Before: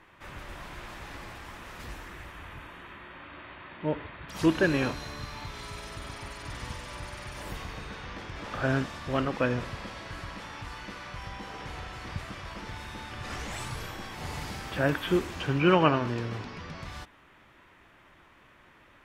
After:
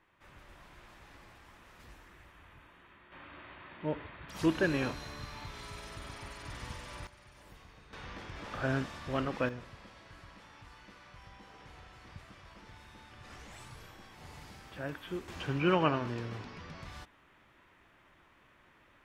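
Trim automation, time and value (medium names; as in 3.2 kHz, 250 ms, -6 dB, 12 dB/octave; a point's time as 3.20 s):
-13 dB
from 3.12 s -5 dB
from 7.07 s -17 dB
from 7.93 s -5 dB
from 9.49 s -13.5 dB
from 15.28 s -6 dB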